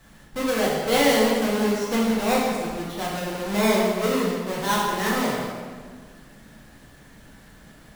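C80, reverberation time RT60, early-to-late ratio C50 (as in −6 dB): 2.0 dB, 1.7 s, 0.0 dB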